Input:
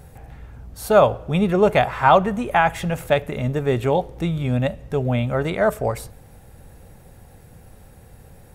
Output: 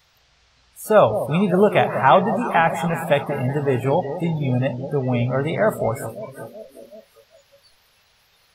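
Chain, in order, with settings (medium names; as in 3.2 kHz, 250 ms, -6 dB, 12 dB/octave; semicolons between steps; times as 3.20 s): band noise 440–5400 Hz -36 dBFS; echo whose repeats swap between lows and highs 187 ms, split 850 Hz, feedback 76%, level -10 dB; spectral noise reduction 25 dB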